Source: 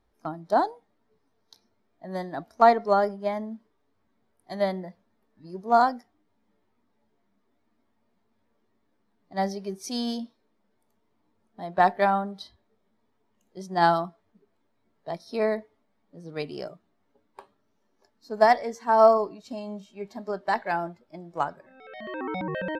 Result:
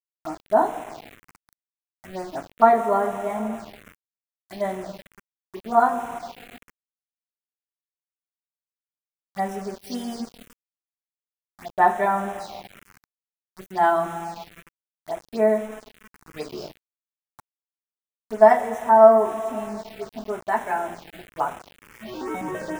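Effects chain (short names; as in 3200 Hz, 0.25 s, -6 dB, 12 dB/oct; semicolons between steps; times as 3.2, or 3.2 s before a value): two-slope reverb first 0.23 s, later 3.2 s, from -18 dB, DRR -2 dB; sample gate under -33 dBFS; envelope phaser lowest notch 430 Hz, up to 4600 Hz, full sweep at -24 dBFS; gain -1.5 dB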